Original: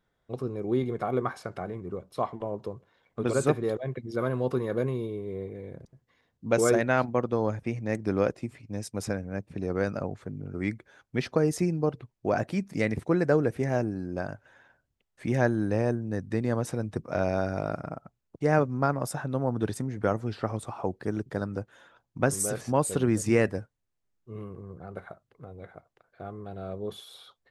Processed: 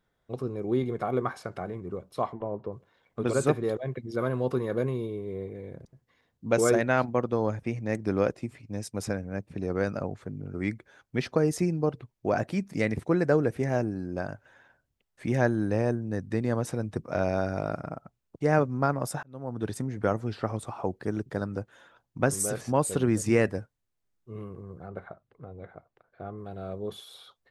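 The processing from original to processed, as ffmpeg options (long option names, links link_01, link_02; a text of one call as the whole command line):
ffmpeg -i in.wav -filter_complex "[0:a]asettb=1/sr,asplit=3[link_01][link_02][link_03];[link_01]atrim=end=2.334[link_04];[link_02]atrim=start=2.33:end=2.73,asetpts=PTS-STARTPTS,afade=type=in:duration=0.004:curve=qsin,afade=type=out:start_time=0.396:duration=0.004:curve=qsin,lowpass=2000[link_05];[link_03]atrim=start=2.726[link_06];[link_04][link_05]acrossfade=duration=0.004:curve1=hsin:curve2=qsin[link_07];[link_07][link_06]acrossfade=duration=0.004:curve1=qsin:curve2=hsin,asettb=1/sr,asplit=3[link_08][link_09][link_10];[link_08]atrim=end=24.874[link_11];[link_09]atrim=start=24.87:end=26.38,asetpts=PTS-STARTPTS,afade=type=in:duration=0.004:curve=qsin,afade=type=out:start_time=1.506:duration=0.004:curve=qsin,aemphasis=mode=reproduction:type=75fm[link_12];[link_10]atrim=start=26.376[link_13];[link_11][link_12]acrossfade=duration=0.004:curve1=hsin:curve2=qsin[link_14];[link_14][link_13]acrossfade=duration=0.004:curve1=qsin:curve2=hsin,asplit=2[link_15][link_16];[link_15]atrim=end=19.23,asetpts=PTS-STARTPTS,afade=type=out:start_time=19.226:duration=0.004:curve=hsin[link_17];[link_16]atrim=start=19.23,asetpts=PTS-STARTPTS,afade=type=in:duration=0.58[link_18];[link_17][link_18]concat=n=2:v=0:a=1" out.wav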